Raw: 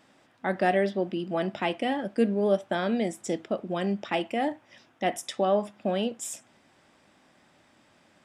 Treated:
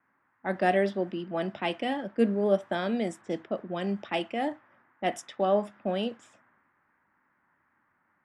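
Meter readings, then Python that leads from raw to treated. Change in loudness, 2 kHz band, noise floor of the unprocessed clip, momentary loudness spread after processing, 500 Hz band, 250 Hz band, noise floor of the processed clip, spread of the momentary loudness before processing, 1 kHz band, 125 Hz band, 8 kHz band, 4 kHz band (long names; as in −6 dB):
−1.5 dB, −1.5 dB, −63 dBFS, 8 LU, −1.0 dB, −1.5 dB, −73 dBFS, 7 LU, −1.5 dB, −2.0 dB, −11.0 dB, −2.0 dB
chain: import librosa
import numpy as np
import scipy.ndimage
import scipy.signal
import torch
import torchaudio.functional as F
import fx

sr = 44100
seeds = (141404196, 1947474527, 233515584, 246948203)

y = fx.env_lowpass(x, sr, base_hz=480.0, full_db=-23.5)
y = fx.dmg_noise_band(y, sr, seeds[0], low_hz=810.0, high_hz=1900.0, level_db=-58.0)
y = fx.band_widen(y, sr, depth_pct=40)
y = y * librosa.db_to_amplitude(-2.0)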